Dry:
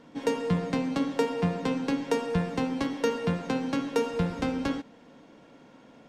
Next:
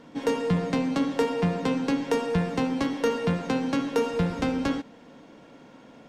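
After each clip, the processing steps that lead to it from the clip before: saturation -18 dBFS, distortion -19 dB; trim +3.5 dB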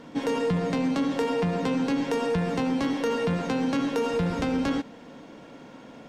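peak limiter -23 dBFS, peak gain reduction 8 dB; trim +4 dB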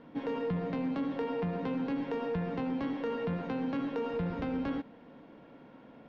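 distance through air 310 m; trim -7 dB

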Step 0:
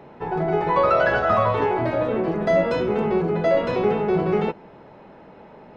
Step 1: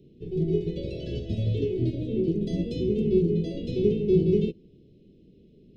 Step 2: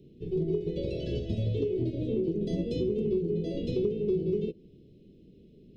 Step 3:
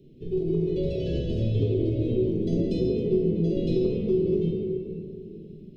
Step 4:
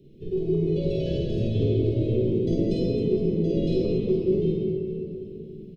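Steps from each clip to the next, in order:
elliptic band-stop 390–3200 Hz, stop band 70 dB; bass shelf 160 Hz +9.5 dB; upward expansion 1.5:1, over -33 dBFS
dynamic bell 520 Hz, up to +7 dB, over -37 dBFS, Q 1.1; compression 6:1, threshold -26 dBFS, peak gain reduction 13 dB
reverberation RT60 2.7 s, pre-delay 3 ms, DRR -1.5 dB
reverse bouncing-ball echo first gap 50 ms, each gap 1.6×, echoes 5

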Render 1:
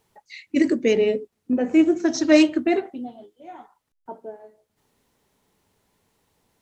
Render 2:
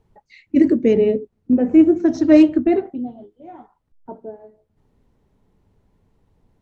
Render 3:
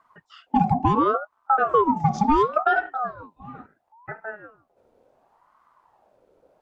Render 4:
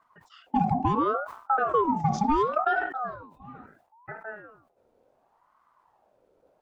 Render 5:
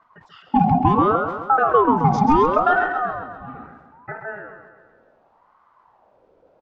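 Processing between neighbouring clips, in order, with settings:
tilt EQ -4 dB/octave; trim -1.5 dB
compression 6:1, threshold -15 dBFS, peak gain reduction 9 dB; ring modulator with a swept carrier 790 Hz, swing 40%, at 0.71 Hz; trim +2 dB
decay stretcher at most 96 dB/s; trim -5 dB
distance through air 140 m; feedback delay 133 ms, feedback 55%, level -9 dB; trim +8 dB

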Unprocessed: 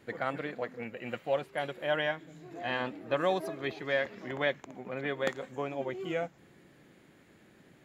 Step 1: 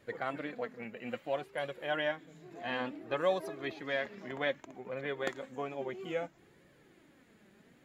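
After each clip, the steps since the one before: flange 0.6 Hz, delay 1.6 ms, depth 3.6 ms, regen +45%; trim +1 dB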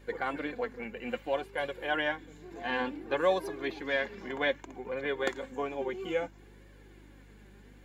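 high-pass 220 Hz 12 dB/octave; comb of notches 640 Hz; hum 50 Hz, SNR 21 dB; trim +5.5 dB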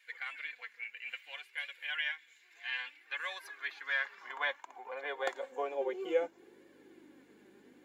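high-pass sweep 2.2 kHz -> 300 Hz, 2.97–6.77 s; trim -5 dB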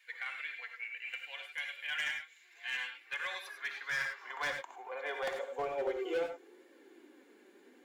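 high-pass 280 Hz 24 dB/octave; hard clipper -30.5 dBFS, distortion -11 dB; gated-style reverb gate 120 ms rising, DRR 5 dB

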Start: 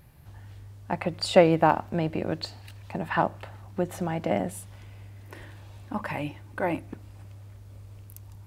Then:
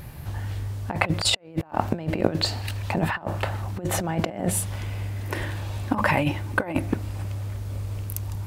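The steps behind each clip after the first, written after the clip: compressor with a negative ratio -33 dBFS, ratio -0.5; trim +8.5 dB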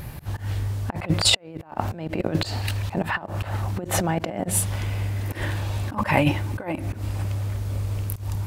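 slow attack 119 ms; trim +4 dB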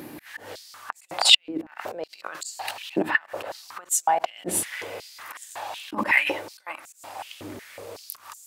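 hum 60 Hz, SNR 15 dB; step-sequenced high-pass 5.4 Hz 310–7300 Hz; trim -2 dB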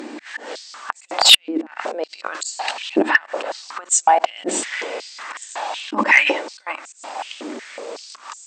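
brick-wall FIR band-pass 200–8500 Hz; sine folder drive 5 dB, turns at -1 dBFS; trim -1 dB

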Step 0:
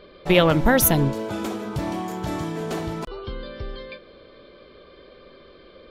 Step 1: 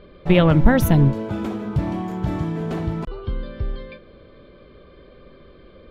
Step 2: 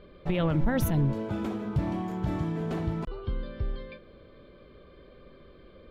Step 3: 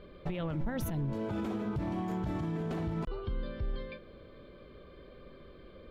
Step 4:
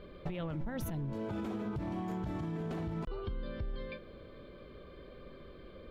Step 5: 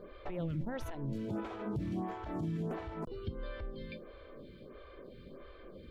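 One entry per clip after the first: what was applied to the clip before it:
tone controls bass +10 dB, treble -11 dB; trim -1.5 dB
peak limiter -12 dBFS, peak gain reduction 10.5 dB; trim -5.5 dB
peak limiter -27 dBFS, peak gain reduction 9.5 dB
compression, threshold -35 dBFS, peak gain reduction 6 dB; trim +1 dB
lamp-driven phase shifter 1.5 Hz; trim +3 dB

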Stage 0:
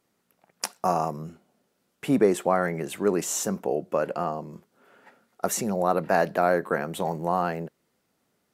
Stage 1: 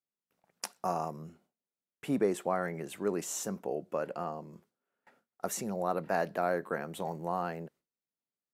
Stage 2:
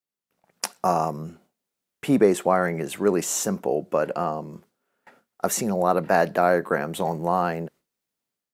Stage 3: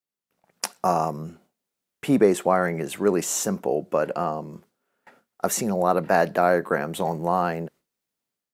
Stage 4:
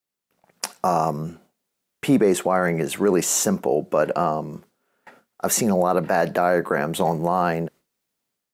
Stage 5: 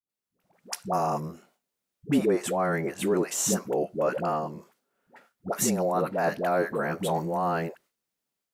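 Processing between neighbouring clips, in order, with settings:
gate with hold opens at -46 dBFS; trim -8.5 dB
level rider gain up to 9 dB; trim +2 dB
no audible change
loudness maximiser +12.5 dB; trim -7.5 dB
phase dispersion highs, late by 95 ms, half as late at 470 Hz; trim -6 dB

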